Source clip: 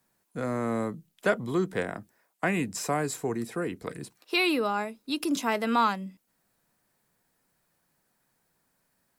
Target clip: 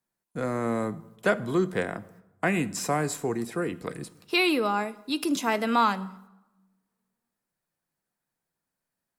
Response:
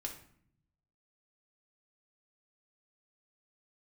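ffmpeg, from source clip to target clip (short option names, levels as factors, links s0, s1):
-filter_complex "[0:a]agate=range=0.2:threshold=0.001:ratio=16:detection=peak,asplit=2[s0][s1];[1:a]atrim=start_sample=2205,asetrate=25137,aresample=44100[s2];[s1][s2]afir=irnorm=-1:irlink=0,volume=0.224[s3];[s0][s3]amix=inputs=2:normalize=0"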